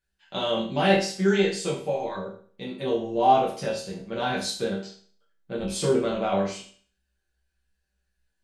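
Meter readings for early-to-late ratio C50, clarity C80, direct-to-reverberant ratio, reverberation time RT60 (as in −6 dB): 6.0 dB, 10.0 dB, −7.0 dB, 0.45 s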